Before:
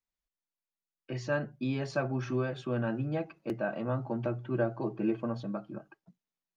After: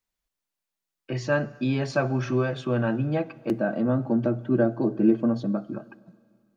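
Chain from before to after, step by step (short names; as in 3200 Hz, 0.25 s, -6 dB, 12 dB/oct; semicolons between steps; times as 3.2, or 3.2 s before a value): 3.5–5.73 fifteen-band EQ 100 Hz -3 dB, 250 Hz +7 dB, 1000 Hz -6 dB, 2500 Hz -9 dB; plate-style reverb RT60 2.1 s, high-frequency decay 1×, DRR 18.5 dB; gain +7 dB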